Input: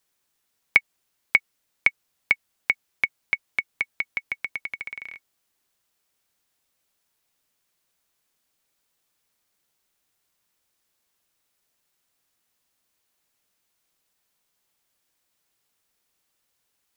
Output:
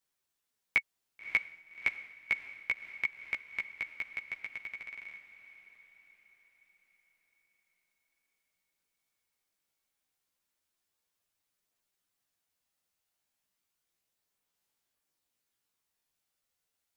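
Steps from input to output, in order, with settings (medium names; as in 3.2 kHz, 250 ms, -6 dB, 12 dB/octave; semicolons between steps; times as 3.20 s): chorus voices 2, 0.17 Hz, delay 14 ms, depth 4.2 ms; echo that smears into a reverb 586 ms, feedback 46%, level -12.5 dB; trim -6.5 dB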